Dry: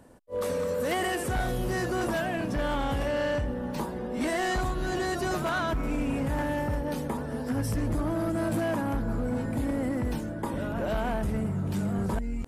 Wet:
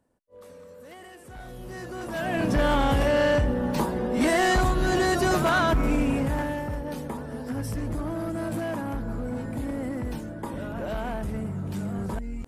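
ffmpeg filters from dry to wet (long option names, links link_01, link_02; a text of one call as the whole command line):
ffmpeg -i in.wav -af "volume=6.5dB,afade=type=in:start_time=1.21:duration=0.89:silence=0.266073,afade=type=in:start_time=2.1:duration=0.38:silence=0.237137,afade=type=out:start_time=5.86:duration=0.75:silence=0.375837" out.wav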